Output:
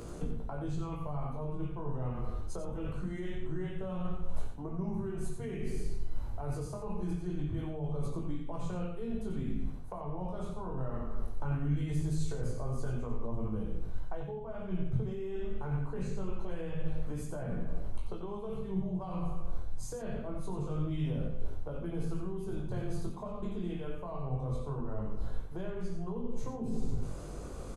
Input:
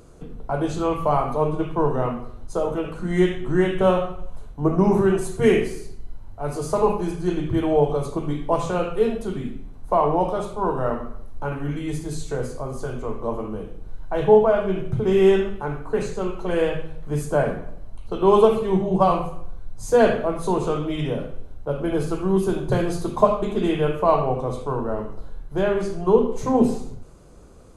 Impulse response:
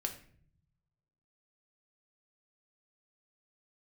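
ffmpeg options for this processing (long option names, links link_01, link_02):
-filter_complex "[0:a]areverse,acompressor=threshold=-31dB:ratio=12,areverse,flanger=delay=17:depth=6:speed=0.23,acrossover=split=180[link_01][link_02];[link_02]acompressor=threshold=-50dB:ratio=6[link_03];[link_01][link_03]amix=inputs=2:normalize=0,aecho=1:1:90:0.398,volume=8dB"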